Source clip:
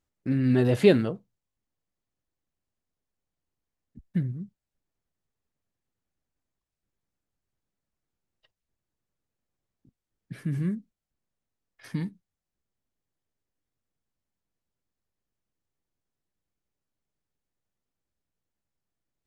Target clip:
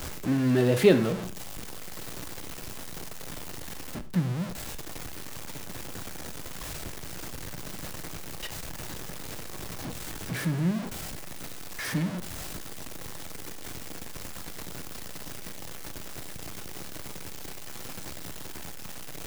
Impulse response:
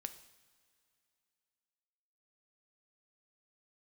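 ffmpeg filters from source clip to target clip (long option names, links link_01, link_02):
-filter_complex "[0:a]aeval=exprs='val(0)+0.5*0.0422*sgn(val(0))':channel_layout=same,acrossover=split=130|3100[link_01][link_02][link_03];[link_01]alimiter=level_in=11.5dB:limit=-24dB:level=0:latency=1,volume=-11.5dB[link_04];[link_04][link_02][link_03]amix=inputs=3:normalize=0[link_05];[1:a]atrim=start_sample=2205,afade=type=out:start_time=0.17:duration=0.01,atrim=end_sample=7938[link_06];[link_05][link_06]afir=irnorm=-1:irlink=0,volume=2.5dB"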